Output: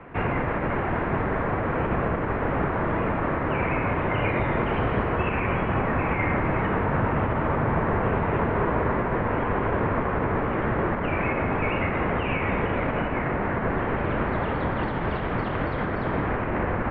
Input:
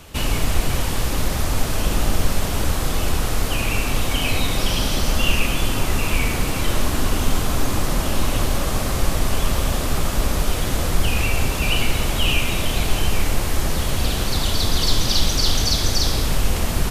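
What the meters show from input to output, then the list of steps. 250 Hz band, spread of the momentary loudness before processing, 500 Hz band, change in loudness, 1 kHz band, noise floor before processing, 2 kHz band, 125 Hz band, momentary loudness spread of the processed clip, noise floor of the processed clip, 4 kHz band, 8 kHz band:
+0.5 dB, 4 LU, +3.0 dB, -3.5 dB, +3.0 dB, -23 dBFS, -1.0 dB, -3.5 dB, 2 LU, -28 dBFS, -22.5 dB, under -40 dB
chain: limiter -9.5 dBFS, peak gain reduction 6 dB; mistuned SSB -150 Hz 200–2100 Hz; gain +4.5 dB

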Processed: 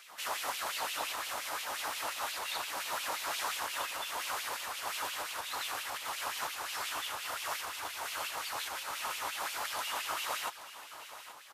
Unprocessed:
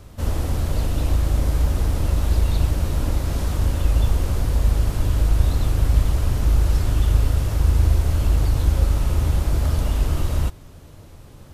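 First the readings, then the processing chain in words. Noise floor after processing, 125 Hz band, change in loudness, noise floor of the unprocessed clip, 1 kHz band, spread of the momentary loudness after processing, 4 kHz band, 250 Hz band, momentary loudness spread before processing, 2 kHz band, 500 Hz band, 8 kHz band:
-50 dBFS, under -40 dB, -14.5 dB, -43 dBFS, 0.0 dB, 3 LU, +1.0 dB, -27.5 dB, 4 LU, +2.0 dB, -12.5 dB, -1.5 dB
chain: HPF 40 Hz; compressor, threshold -18 dBFS, peak gain reduction 7 dB; LFO high-pass sine 5.7 Hz 860–2800 Hz; echo 0.826 s -13.5 dB

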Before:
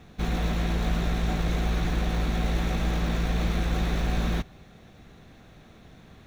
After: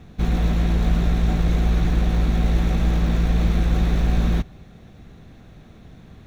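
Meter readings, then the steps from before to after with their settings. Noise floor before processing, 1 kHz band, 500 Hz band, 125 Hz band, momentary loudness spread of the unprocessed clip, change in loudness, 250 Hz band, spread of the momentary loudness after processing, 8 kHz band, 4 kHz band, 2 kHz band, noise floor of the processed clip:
-52 dBFS, +1.0 dB, +2.5 dB, +7.5 dB, 2 LU, +6.5 dB, +6.0 dB, 2 LU, 0.0 dB, 0.0 dB, +0.5 dB, -46 dBFS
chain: low shelf 340 Hz +8 dB

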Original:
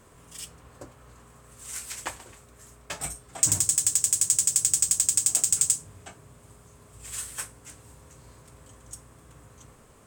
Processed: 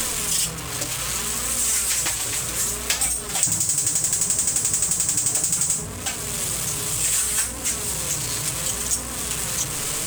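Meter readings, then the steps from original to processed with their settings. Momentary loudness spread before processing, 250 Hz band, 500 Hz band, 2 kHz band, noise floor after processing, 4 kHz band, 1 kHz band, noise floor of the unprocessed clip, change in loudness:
19 LU, +13.5 dB, +13.5 dB, +13.5 dB, -31 dBFS, +11.0 dB, +12.0 dB, -55 dBFS, +2.0 dB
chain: flange 0.66 Hz, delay 3.7 ms, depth 3.4 ms, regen +22%; power-law curve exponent 0.5; three-band squash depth 100%

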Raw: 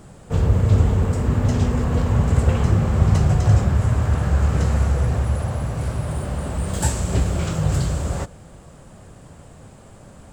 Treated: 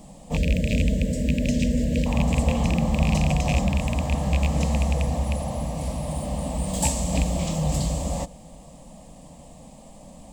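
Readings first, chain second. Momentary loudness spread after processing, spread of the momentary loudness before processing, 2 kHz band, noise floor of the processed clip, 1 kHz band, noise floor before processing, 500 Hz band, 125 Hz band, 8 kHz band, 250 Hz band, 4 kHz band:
7 LU, 9 LU, 0.0 dB, -46 dBFS, -1.5 dB, -45 dBFS, -1.5 dB, -7.0 dB, +1.5 dB, +0.5 dB, +2.5 dB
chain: rattling part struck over -12 dBFS, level -14 dBFS; spectral gain 0.36–2.06, 650–1500 Hz -30 dB; fixed phaser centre 390 Hz, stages 6; gain +2 dB

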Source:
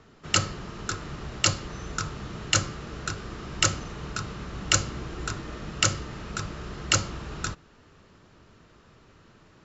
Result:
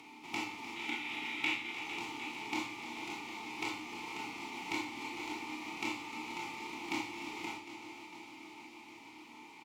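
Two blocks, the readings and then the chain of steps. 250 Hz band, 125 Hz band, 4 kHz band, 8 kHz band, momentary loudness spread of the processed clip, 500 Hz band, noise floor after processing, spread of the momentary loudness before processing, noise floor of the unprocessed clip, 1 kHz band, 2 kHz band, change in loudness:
-5.5 dB, -27.0 dB, -13.0 dB, n/a, 13 LU, -11.0 dB, -54 dBFS, 12 LU, -56 dBFS, -6.5 dB, -5.5 dB, -11.0 dB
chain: spectral whitening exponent 0.1; notches 50/100/150/200/250/300 Hz; Schroeder reverb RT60 0.3 s, combs from 26 ms, DRR -2 dB; spectral gain 0.76–1.74, 1300–4000 Hz +9 dB; upward compressor, threshold -33 dBFS; multi-head echo 0.151 s, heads second and third, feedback 74%, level -17 dB; compressor 2:1, threshold -27 dBFS, peak gain reduction 9 dB; vowel filter u; notch 1600 Hz, Q 18; doubler 17 ms -10.5 dB; gain +7 dB

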